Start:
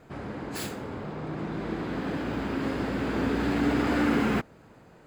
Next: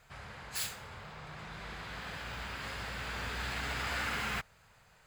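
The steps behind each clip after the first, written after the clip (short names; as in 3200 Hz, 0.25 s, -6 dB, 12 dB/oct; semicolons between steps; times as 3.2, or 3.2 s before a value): passive tone stack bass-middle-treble 10-0-10; gain +2.5 dB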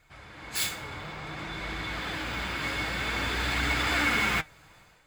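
flange 0.55 Hz, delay 0.4 ms, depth 6.9 ms, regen +72%; AGC gain up to 10 dB; small resonant body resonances 310/2200/3500 Hz, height 15 dB, ringing for 0.1 s; gain +2 dB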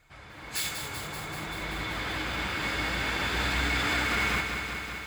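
limiter -20 dBFS, peak gain reduction 6 dB; lo-fi delay 0.192 s, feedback 80%, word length 9-bit, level -7 dB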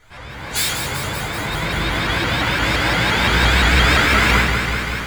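reverb RT60 0.45 s, pre-delay 6 ms, DRR -2.5 dB; shaped vibrato saw up 5.8 Hz, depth 160 cents; gain +6.5 dB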